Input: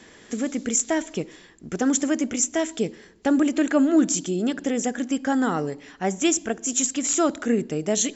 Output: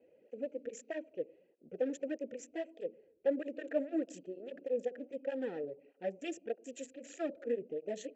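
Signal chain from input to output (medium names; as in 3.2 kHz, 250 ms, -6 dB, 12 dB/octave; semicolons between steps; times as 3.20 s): local Wiener filter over 25 samples; vowel filter e; bass shelf 210 Hz +4.5 dB; cancelling through-zero flanger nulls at 1.6 Hz, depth 5.9 ms; trim +1 dB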